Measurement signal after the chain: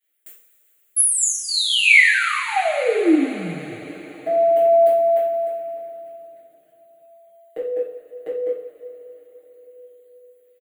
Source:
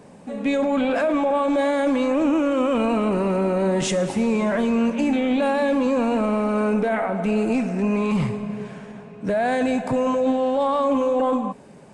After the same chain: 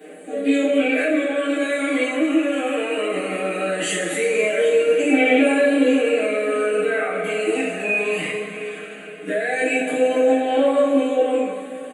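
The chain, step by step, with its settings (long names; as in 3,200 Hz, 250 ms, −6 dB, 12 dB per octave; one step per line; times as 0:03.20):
high-pass filter 370 Hz 24 dB per octave
high-shelf EQ 7,000 Hz +7.5 dB
comb filter 6.5 ms, depth 93%
dynamic equaliser 3,500 Hz, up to −8 dB, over −45 dBFS, Q 4.9
brickwall limiter −16.5 dBFS
phase shifter 0.19 Hz, delay 1.2 ms, feedback 46%
phaser with its sweep stopped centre 2,300 Hz, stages 4
coupled-rooms reverb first 0.46 s, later 4.8 s, from −18 dB, DRR −10 dB
level −3 dB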